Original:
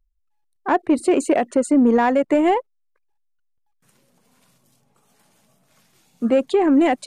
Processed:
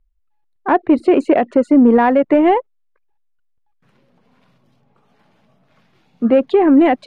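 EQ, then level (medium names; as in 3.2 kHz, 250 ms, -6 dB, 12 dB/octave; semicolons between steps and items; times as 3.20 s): distance through air 330 m; treble shelf 5.9 kHz +6 dB; +5.5 dB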